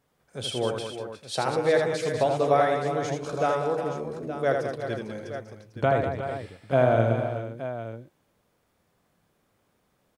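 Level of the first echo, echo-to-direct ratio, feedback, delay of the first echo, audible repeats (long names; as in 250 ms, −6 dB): −5.0 dB, −1.5 dB, repeats not evenly spaced, 79 ms, 5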